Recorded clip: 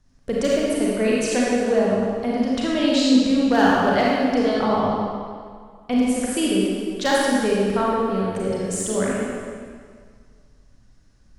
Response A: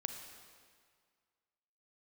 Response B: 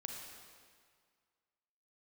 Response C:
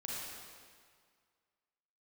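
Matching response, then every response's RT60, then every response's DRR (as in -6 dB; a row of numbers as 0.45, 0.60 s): C; 1.9, 1.9, 1.9 s; 5.5, 1.0, -5.5 dB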